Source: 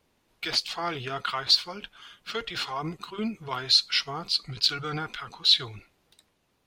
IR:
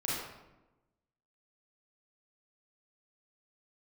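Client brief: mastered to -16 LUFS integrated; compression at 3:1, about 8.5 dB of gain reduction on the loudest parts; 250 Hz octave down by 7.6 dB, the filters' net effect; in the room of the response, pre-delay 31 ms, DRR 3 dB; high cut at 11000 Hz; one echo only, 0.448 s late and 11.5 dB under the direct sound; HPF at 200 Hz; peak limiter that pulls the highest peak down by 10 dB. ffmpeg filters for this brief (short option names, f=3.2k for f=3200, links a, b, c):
-filter_complex "[0:a]highpass=200,lowpass=11k,equalizer=f=250:t=o:g=-7.5,acompressor=threshold=-27dB:ratio=3,alimiter=level_in=1.5dB:limit=-24dB:level=0:latency=1,volume=-1.5dB,aecho=1:1:448:0.266,asplit=2[a][b];[1:a]atrim=start_sample=2205,adelay=31[c];[b][c]afir=irnorm=-1:irlink=0,volume=-9dB[d];[a][d]amix=inputs=2:normalize=0,volume=19dB"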